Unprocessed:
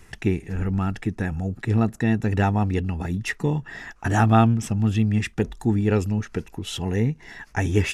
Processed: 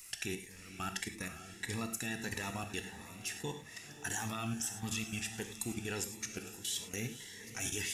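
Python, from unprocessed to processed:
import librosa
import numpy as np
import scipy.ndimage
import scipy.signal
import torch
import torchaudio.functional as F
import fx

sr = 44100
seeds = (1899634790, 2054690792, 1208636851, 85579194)

y = librosa.effects.preemphasis(x, coef=0.97, zi=[0.0])
y = fx.level_steps(y, sr, step_db=16)
y = fx.echo_diffused(y, sr, ms=515, feedback_pct=50, wet_db=-12.5)
y = fx.rev_gated(y, sr, seeds[0], gate_ms=130, shape='flat', drr_db=7.0)
y = fx.notch_cascade(y, sr, direction='rising', hz=1.6)
y = y * 10.0 ** (11.0 / 20.0)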